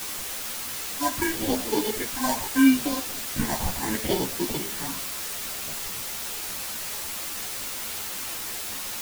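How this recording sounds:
aliases and images of a low sample rate 1,300 Hz, jitter 0%
phaser sweep stages 4, 0.75 Hz, lowest notch 390–2,200 Hz
a quantiser's noise floor 6 bits, dither triangular
a shimmering, thickened sound

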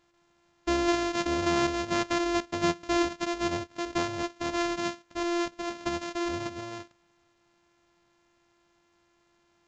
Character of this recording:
a buzz of ramps at a fixed pitch in blocks of 128 samples
A-law companding

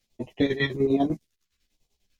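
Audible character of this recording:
phaser sweep stages 2, 1.2 Hz, lowest notch 640–1,500 Hz
chopped level 10 Hz, depth 65%, duty 55%
a shimmering, thickened sound

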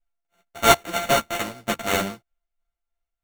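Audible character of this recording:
a buzz of ramps at a fixed pitch in blocks of 64 samples
tremolo triangle 3.1 Hz, depth 60%
aliases and images of a low sample rate 5,000 Hz, jitter 0%
a shimmering, thickened sound

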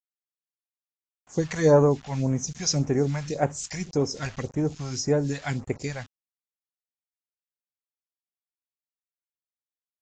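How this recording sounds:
a quantiser's noise floor 8 bits, dither none
phaser sweep stages 2, 1.8 Hz, lowest notch 320–4,600 Hz
AAC

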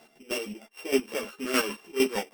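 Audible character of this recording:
a buzz of ramps at a fixed pitch in blocks of 16 samples
chopped level 6.5 Hz, depth 65%, duty 40%
a shimmering, thickened sound

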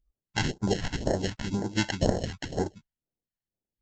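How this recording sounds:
aliases and images of a low sample rate 1,200 Hz, jitter 0%
phaser sweep stages 2, 2 Hz, lowest notch 370–2,700 Hz
Ogg Vorbis

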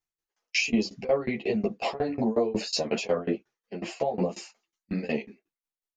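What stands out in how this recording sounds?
tremolo saw down 5.5 Hz, depth 100%
a shimmering, thickened sound

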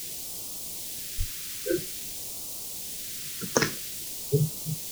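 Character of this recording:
a quantiser's noise floor 8 bits, dither triangular
phaser sweep stages 2, 0.5 Hz, lowest notch 760–1,600 Hz

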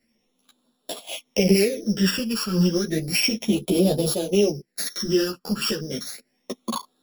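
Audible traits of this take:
a buzz of ramps at a fixed pitch in blocks of 8 samples
phaser sweep stages 12, 0.32 Hz, lowest notch 650–2,000 Hz
tremolo saw down 0.8 Hz, depth 35%
a shimmering, thickened sound

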